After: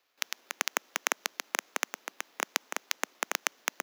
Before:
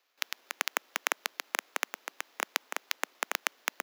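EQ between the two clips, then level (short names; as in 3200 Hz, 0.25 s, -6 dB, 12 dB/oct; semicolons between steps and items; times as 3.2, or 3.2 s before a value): bell 100 Hz +12.5 dB 2 oct; dynamic EQ 6200 Hz, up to +6 dB, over -57 dBFS, Q 3.1; 0.0 dB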